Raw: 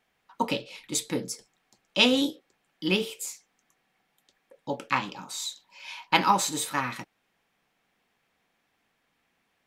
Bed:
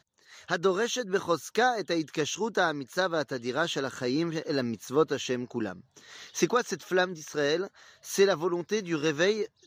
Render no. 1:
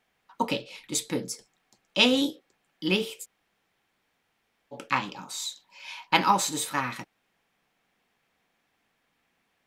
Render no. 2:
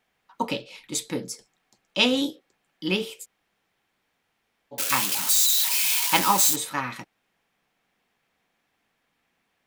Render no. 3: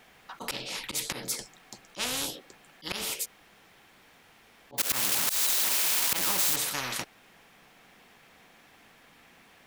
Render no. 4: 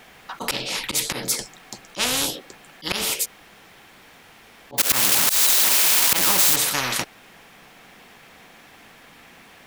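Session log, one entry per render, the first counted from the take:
3.23–4.74 room tone, crossfade 0.06 s
4.78–6.56 switching spikes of -14 dBFS
auto swell 0.152 s; spectral compressor 4:1
gain +9 dB; limiter -3 dBFS, peak gain reduction 3 dB

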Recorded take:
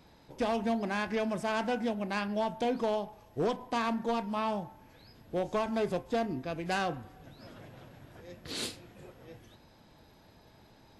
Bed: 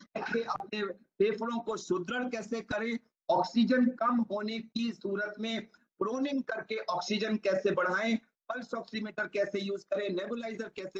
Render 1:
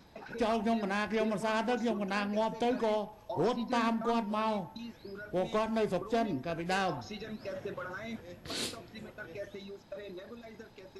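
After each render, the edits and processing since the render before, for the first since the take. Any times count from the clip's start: add bed -11.5 dB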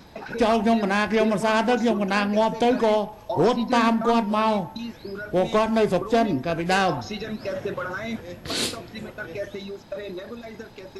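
gain +10.5 dB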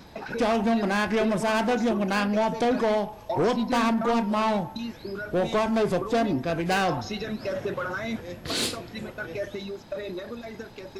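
soft clip -18 dBFS, distortion -13 dB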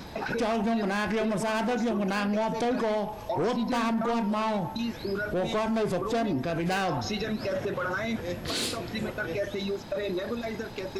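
in parallel at 0 dB: compressor, threshold -35 dBFS, peak gain reduction 13.5 dB; on the sum: limiter -22.5 dBFS, peak gain reduction 6.5 dB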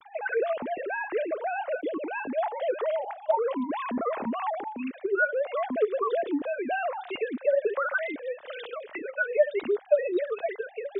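sine-wave speech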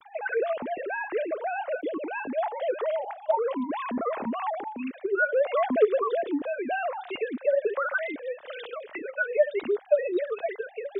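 5.32–6.01 gain +4.5 dB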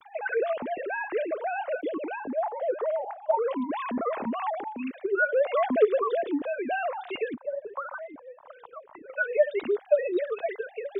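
2.15–3.32 LPF 1200 Hz -> 1600 Hz; 7.34–9.1 EQ curve 130 Hz 0 dB, 470 Hz -14 dB, 990 Hz +5 dB, 1700 Hz -17 dB, 3700 Hz -26 dB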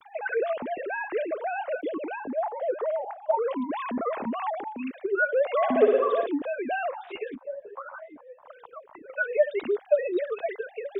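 5.56–6.26 flutter echo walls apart 10.1 m, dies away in 0.79 s; 6.91–8.42 ensemble effect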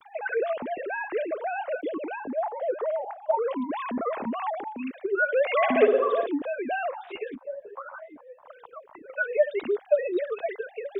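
5.28–5.87 bell 2300 Hz +11.5 dB 0.92 oct

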